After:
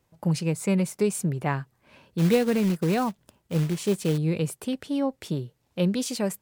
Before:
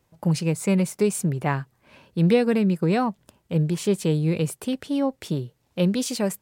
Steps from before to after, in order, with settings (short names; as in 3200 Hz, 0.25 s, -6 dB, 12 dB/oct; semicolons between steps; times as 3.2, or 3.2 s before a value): 2.18–4.18 short-mantissa float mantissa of 2-bit; gain -2.5 dB